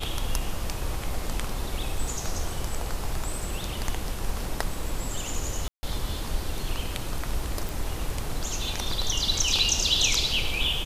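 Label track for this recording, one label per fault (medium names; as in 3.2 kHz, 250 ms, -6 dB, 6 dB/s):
5.680000	5.830000	dropout 150 ms
7.690000	7.690000	pop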